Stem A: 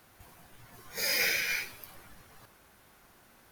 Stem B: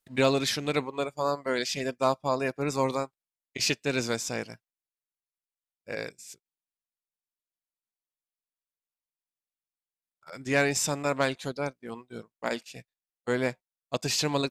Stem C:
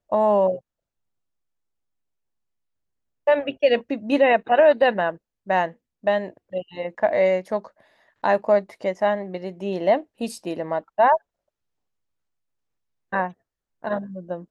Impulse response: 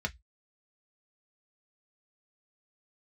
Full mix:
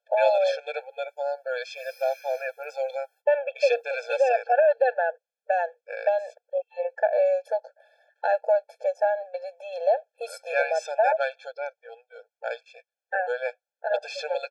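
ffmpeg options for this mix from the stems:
-filter_complex "[0:a]adelay=800,volume=0.251,afade=t=in:st=1.99:d=0.55:silence=0.446684[s0];[1:a]lowpass=3000,lowshelf=f=79:g=5,volume=1.19,asplit=2[s1][s2];[2:a]highshelf=f=7900:g=-7,acompressor=threshold=0.0794:ratio=2,volume=1.19[s3];[s2]apad=whole_len=190222[s4];[s0][s4]sidechaingate=range=0.00158:threshold=0.00398:ratio=16:detection=peak[s5];[s5][s1][s3]amix=inputs=3:normalize=0,afftfilt=real='re*eq(mod(floor(b*sr/1024/450),2),1)':imag='im*eq(mod(floor(b*sr/1024/450),2),1)':win_size=1024:overlap=0.75"

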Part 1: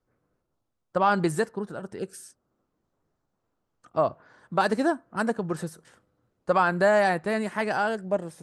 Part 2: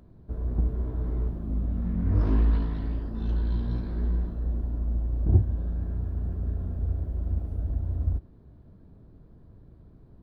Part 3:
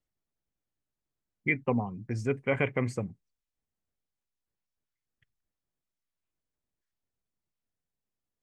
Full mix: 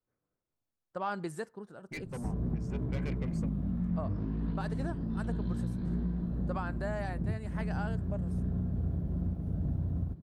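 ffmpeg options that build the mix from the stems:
-filter_complex "[0:a]volume=0.224[s0];[1:a]equalizer=f=160:t=o:w=1.1:g=14.5,acrossover=split=95|650[s1][s2][s3];[s1]acompressor=threshold=0.0126:ratio=4[s4];[s2]acompressor=threshold=0.0316:ratio=4[s5];[s3]acompressor=threshold=0.00178:ratio=4[s6];[s4][s5][s6]amix=inputs=3:normalize=0,adelay=1950,volume=0.944[s7];[2:a]asoftclip=type=tanh:threshold=0.0355,adelay=450,volume=0.398[s8];[s0][s7][s8]amix=inputs=3:normalize=0,alimiter=limit=0.0631:level=0:latency=1:release=361"

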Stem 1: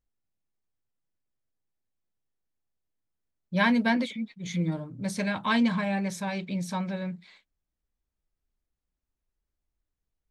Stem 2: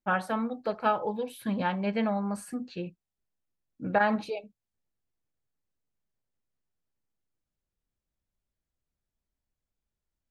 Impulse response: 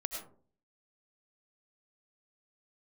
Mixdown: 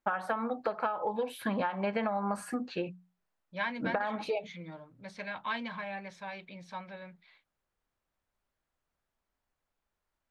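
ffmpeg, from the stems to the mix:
-filter_complex "[0:a]acrossover=split=520 4200:gain=0.224 1 0.0708[s0][s1][s2];[s0][s1][s2]amix=inputs=3:normalize=0,volume=0.501[s3];[1:a]equalizer=f=1100:t=o:w=2.8:g=13.5,bandreject=f=60:t=h:w=6,bandreject=f=120:t=h:w=6,bandreject=f=180:t=h:w=6,acompressor=threshold=0.1:ratio=6,volume=0.794[s4];[s3][s4]amix=inputs=2:normalize=0,acompressor=threshold=0.0398:ratio=6"

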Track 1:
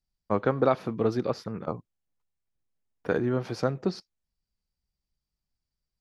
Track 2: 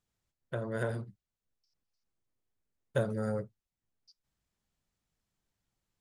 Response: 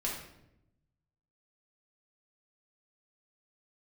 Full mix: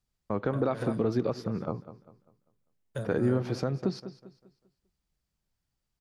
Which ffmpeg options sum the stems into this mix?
-filter_complex "[0:a]equalizer=f=130:w=0.3:g=5,volume=0.841,asplit=2[s0][s1];[s1]volume=0.141[s2];[1:a]acrossover=split=250|3000[s3][s4][s5];[s4]acompressor=threshold=0.0158:ratio=2.5[s6];[s3][s6][s5]amix=inputs=3:normalize=0,volume=0.75[s7];[s2]aecho=0:1:198|396|594|792|990:1|0.36|0.13|0.0467|0.0168[s8];[s0][s7][s8]amix=inputs=3:normalize=0,alimiter=limit=0.141:level=0:latency=1:release=99"

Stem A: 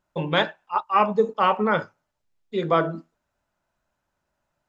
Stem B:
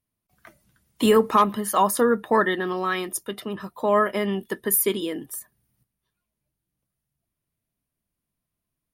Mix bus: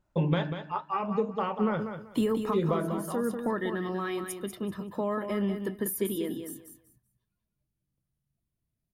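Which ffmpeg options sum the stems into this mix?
-filter_complex "[0:a]acompressor=threshold=0.0562:ratio=10,flanger=delay=2.1:depth=8.2:regen=-73:speed=0.69:shape=triangular,acontrast=35,volume=0.531,asplit=3[s0][s1][s2];[s1]volume=0.376[s3];[1:a]acompressor=threshold=0.0891:ratio=4,adelay=1150,volume=0.316,asplit=2[s4][s5];[s5]volume=0.422[s6];[s2]apad=whole_len=444936[s7];[s4][s7]sidechaincompress=threshold=0.00501:ratio=8:attack=16:release=339[s8];[s3][s6]amix=inputs=2:normalize=0,aecho=0:1:192|384|576:1|0.21|0.0441[s9];[s0][s8][s9]amix=inputs=3:normalize=0,lowshelf=f=360:g=12"

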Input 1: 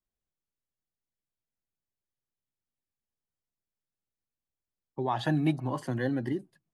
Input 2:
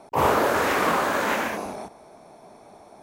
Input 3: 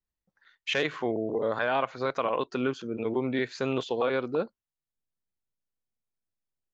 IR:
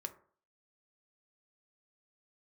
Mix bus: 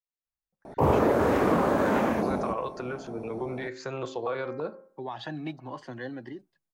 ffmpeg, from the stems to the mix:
-filter_complex "[0:a]dynaudnorm=f=510:g=5:m=2.66,lowpass=f=5900:w=0.5412,lowpass=f=5900:w=1.3066,lowshelf=f=240:g=-12,volume=0.316[s0];[1:a]tiltshelf=f=800:g=10,adelay=650,volume=1.19[s1];[2:a]bandreject=f=264.9:t=h:w=4,bandreject=f=529.8:t=h:w=4,bandreject=f=794.7:t=h:w=4,bandreject=f=1059.6:t=h:w=4,bandreject=f=1324.5:t=h:w=4,bandreject=f=1589.4:t=h:w=4,bandreject=f=1854.3:t=h:w=4,bandreject=f=2119.2:t=h:w=4,bandreject=f=2384.1:t=h:w=4,dynaudnorm=f=130:g=7:m=3.98,adelay=250,volume=0.282,asplit=2[s2][s3];[s3]volume=0.531[s4];[s0][s2]amix=inputs=2:normalize=0,acrossover=split=270|3000[s5][s6][s7];[s6]acompressor=threshold=0.0251:ratio=6[s8];[s5][s8][s7]amix=inputs=3:normalize=0,alimiter=level_in=1.06:limit=0.0631:level=0:latency=1:release=330,volume=0.944,volume=1[s9];[3:a]atrim=start_sample=2205[s10];[s4][s10]afir=irnorm=-1:irlink=0[s11];[s1][s9][s11]amix=inputs=3:normalize=0,acompressor=threshold=0.0708:ratio=2"

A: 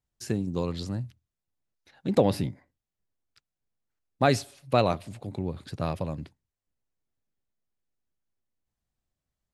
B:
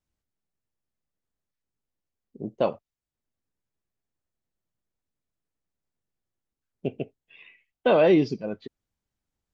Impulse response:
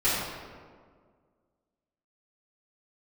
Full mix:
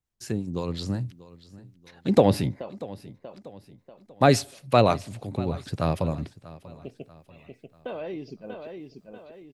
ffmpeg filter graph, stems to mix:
-filter_complex "[0:a]dynaudnorm=f=680:g=3:m=4.47,acrossover=split=640[s0][s1];[s0]aeval=exprs='val(0)*(1-0.5/2+0.5/2*cos(2*PI*5.6*n/s))':c=same[s2];[s1]aeval=exprs='val(0)*(1-0.5/2-0.5/2*cos(2*PI*5.6*n/s))':c=same[s3];[s2][s3]amix=inputs=2:normalize=0,volume=1,asplit=2[s4][s5];[s5]volume=0.112[s6];[1:a]acompressor=threshold=0.0708:ratio=6,volume=0.355,asplit=2[s7][s8];[s8]volume=0.531[s9];[s6][s9]amix=inputs=2:normalize=0,aecho=0:1:639|1278|1917|2556|3195|3834:1|0.43|0.185|0.0795|0.0342|0.0147[s10];[s4][s7][s10]amix=inputs=3:normalize=0"

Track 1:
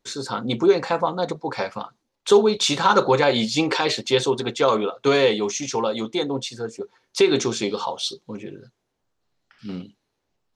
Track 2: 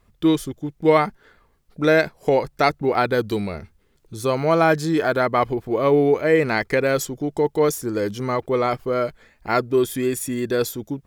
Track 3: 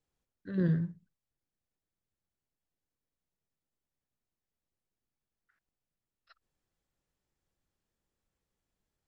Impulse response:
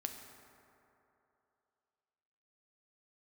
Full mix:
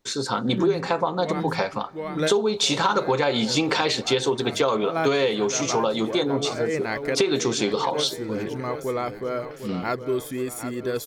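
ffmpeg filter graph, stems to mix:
-filter_complex "[0:a]volume=1.26,asplit=3[s0][s1][s2];[s1]volume=0.158[s3];[1:a]adelay=350,volume=0.473,asplit=2[s4][s5];[s5]volume=0.299[s6];[2:a]volume=1.33,asplit=2[s7][s8];[s8]volume=0.531[s9];[s2]apad=whole_len=503360[s10];[s4][s10]sidechaincompress=threshold=0.0251:ratio=8:attack=46:release=104[s11];[3:a]atrim=start_sample=2205[s12];[s3][s12]afir=irnorm=-1:irlink=0[s13];[s6][s9]amix=inputs=2:normalize=0,aecho=0:1:755|1510|2265|3020|3775|4530|5285|6040:1|0.52|0.27|0.141|0.0731|0.038|0.0198|0.0103[s14];[s0][s11][s7][s13][s14]amix=inputs=5:normalize=0,acompressor=threshold=0.126:ratio=6"

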